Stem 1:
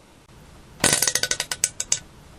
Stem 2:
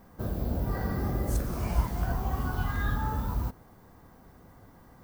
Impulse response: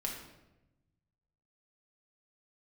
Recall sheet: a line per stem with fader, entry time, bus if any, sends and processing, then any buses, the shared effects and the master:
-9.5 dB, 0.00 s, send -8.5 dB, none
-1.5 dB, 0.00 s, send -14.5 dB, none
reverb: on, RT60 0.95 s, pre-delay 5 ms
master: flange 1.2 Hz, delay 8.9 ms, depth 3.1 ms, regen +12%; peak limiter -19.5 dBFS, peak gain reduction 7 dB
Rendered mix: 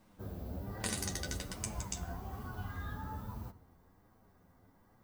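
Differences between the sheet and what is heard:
stem 1 -9.5 dB -> -18.5 dB; stem 2 -1.5 dB -> -9.5 dB

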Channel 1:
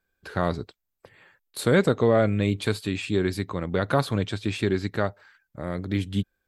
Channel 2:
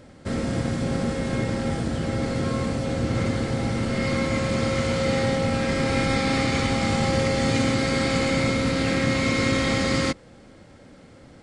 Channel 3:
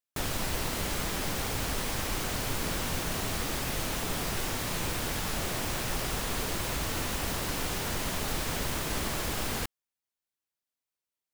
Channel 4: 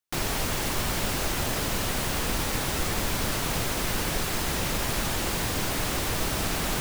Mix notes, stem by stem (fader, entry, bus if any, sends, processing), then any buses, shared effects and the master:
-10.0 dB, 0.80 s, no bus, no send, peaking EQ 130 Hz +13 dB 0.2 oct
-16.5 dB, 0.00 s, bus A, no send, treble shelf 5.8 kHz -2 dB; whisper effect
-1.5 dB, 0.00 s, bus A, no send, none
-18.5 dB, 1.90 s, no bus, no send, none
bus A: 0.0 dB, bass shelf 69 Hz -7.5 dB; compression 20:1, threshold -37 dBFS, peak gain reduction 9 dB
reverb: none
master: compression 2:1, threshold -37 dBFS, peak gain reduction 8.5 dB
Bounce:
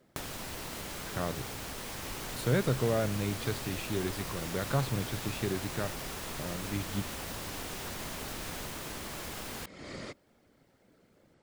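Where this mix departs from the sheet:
stem 3 -1.5 dB -> +9.0 dB; master: missing compression 2:1, threshold -37 dBFS, peak gain reduction 8.5 dB

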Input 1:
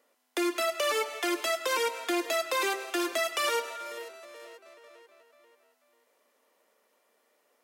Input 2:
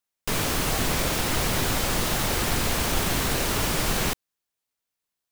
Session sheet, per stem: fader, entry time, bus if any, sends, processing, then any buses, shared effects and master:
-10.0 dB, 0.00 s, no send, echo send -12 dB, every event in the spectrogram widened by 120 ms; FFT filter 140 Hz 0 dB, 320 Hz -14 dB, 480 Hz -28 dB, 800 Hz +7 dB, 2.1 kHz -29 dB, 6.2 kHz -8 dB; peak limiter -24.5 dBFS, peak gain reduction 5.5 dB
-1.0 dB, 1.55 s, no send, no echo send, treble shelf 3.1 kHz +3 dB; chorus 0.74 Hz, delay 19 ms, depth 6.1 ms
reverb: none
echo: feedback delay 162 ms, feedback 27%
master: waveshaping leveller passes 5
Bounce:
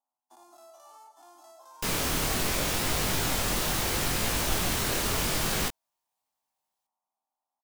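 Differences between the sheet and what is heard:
stem 1 -10.0 dB -> -19.0 dB; master: missing waveshaping leveller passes 5

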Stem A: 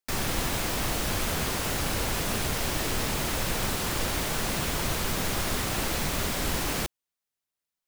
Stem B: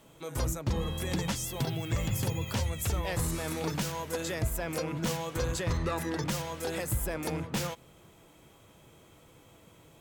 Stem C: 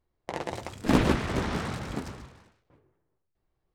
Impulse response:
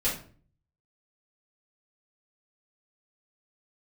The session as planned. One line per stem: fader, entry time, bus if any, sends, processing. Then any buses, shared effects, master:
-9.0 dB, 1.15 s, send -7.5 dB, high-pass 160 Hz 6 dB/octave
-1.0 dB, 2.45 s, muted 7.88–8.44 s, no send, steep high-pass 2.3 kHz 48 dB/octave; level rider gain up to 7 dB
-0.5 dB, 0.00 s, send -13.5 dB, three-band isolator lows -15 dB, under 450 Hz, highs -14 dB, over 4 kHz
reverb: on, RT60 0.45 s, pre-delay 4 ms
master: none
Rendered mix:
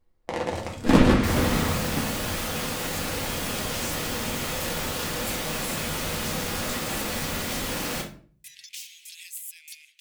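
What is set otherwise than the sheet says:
stem B -1.0 dB -> -7.5 dB; stem C: missing three-band isolator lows -15 dB, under 450 Hz, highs -14 dB, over 4 kHz; reverb return +6.5 dB

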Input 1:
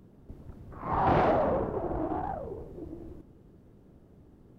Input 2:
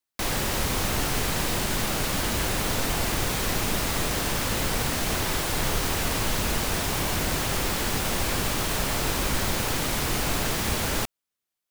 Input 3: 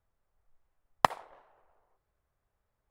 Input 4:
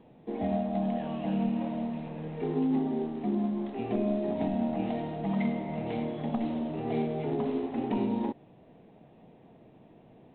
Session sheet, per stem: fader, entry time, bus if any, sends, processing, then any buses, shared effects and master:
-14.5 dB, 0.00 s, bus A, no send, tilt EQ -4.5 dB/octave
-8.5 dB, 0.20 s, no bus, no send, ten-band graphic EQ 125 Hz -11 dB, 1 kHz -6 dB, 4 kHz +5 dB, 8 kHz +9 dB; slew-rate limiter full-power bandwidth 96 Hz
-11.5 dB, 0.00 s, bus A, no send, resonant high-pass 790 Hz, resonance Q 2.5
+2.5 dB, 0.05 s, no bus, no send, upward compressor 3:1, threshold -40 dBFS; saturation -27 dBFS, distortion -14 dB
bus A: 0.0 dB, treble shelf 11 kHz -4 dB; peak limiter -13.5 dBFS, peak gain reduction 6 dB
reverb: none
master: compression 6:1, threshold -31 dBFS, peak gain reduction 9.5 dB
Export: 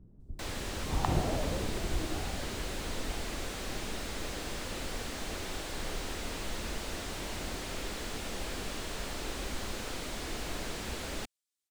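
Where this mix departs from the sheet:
stem 4: muted; master: missing compression 6:1, threshold -31 dBFS, peak gain reduction 9.5 dB

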